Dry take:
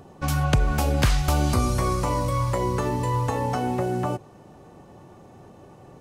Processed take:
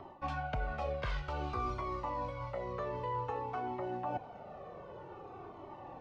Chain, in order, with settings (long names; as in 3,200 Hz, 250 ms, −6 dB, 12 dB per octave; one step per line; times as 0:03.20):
three-way crossover with the lows and the highs turned down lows −14 dB, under 400 Hz, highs −17 dB, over 4,900 Hz
notch filter 1,700 Hz, Q 12
reversed playback
downward compressor 12 to 1, threshold −38 dBFS, peak gain reduction 17.5 dB
reversed playback
head-to-tape spacing loss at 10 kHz 24 dB
flanger whose copies keep moving one way falling 0.53 Hz
level +10 dB